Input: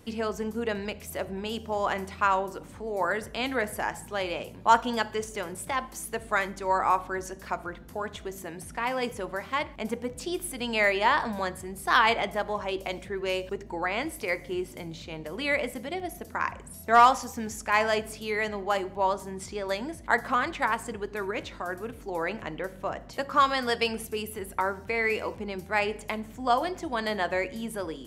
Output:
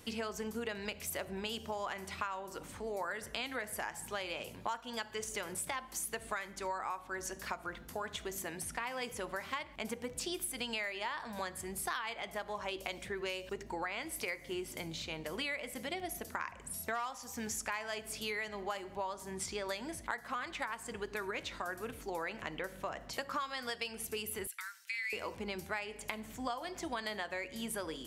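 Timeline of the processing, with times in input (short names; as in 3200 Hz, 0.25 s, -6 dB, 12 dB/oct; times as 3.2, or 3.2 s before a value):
24.47–25.13 Bessel high-pass 2800 Hz, order 6
whole clip: tilt shelf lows -4.5 dB, about 1100 Hz; compressor 12:1, threshold -34 dBFS; gain -1 dB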